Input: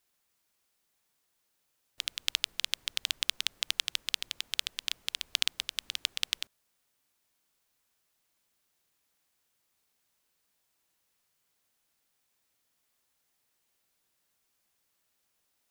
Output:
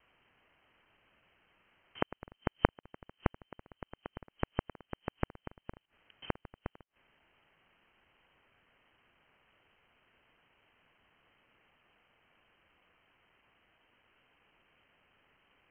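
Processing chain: slices played last to first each 122 ms, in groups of 8; frequency inversion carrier 3.1 kHz; inverted gate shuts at -32 dBFS, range -32 dB; trim +15 dB

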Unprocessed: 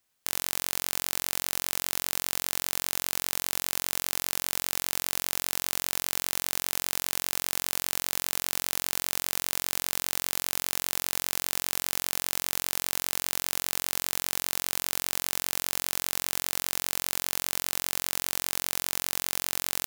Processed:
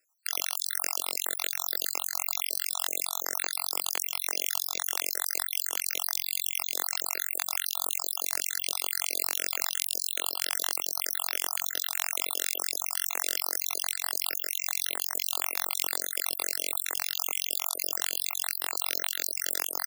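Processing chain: random holes in the spectrogram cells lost 68%; high-pass 340 Hz 24 dB/octave; trim +5 dB

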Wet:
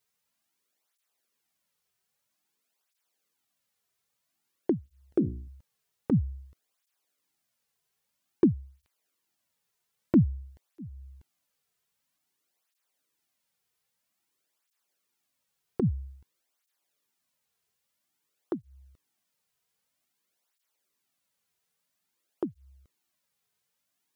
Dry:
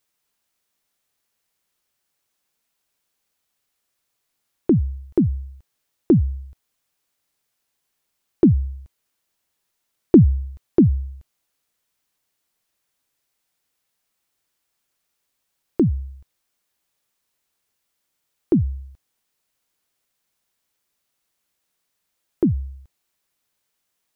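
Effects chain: 4.84–5.48 s: hum notches 60/120/180/240/300/360/420/480/540 Hz; compression 1.5:1, threshold -25 dBFS, peak gain reduction 7 dB; cancelling through-zero flanger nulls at 0.51 Hz, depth 3.7 ms; trim -1.5 dB

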